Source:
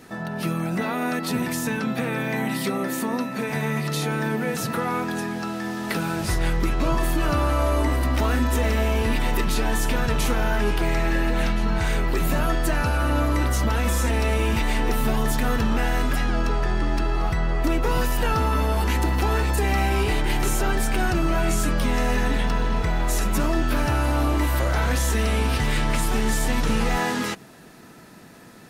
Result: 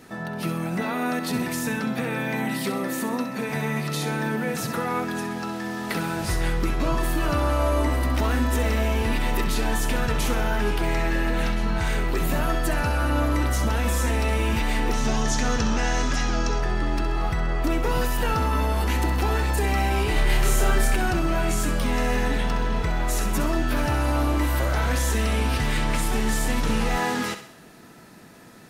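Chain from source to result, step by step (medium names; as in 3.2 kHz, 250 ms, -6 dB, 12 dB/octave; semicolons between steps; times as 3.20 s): 14.93–16.59 s: resonant low-pass 6.2 kHz, resonance Q 4.1; 20.13–20.96 s: doubling 29 ms -2 dB; thinning echo 65 ms, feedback 49%, level -10 dB; trim -1.5 dB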